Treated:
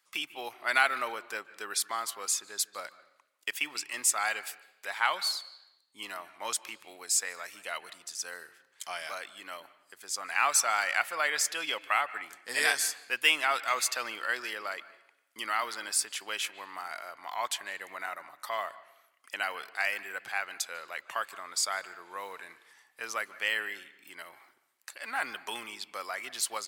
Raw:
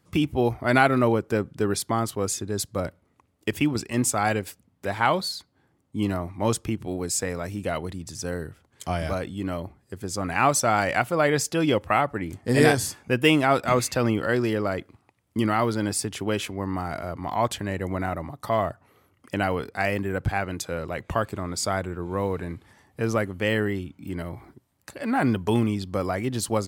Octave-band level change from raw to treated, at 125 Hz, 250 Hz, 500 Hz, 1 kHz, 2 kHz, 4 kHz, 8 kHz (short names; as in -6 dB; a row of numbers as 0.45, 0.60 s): under -40 dB, -28.0 dB, -16.5 dB, -7.0 dB, -1.5 dB, 0.0 dB, 0.0 dB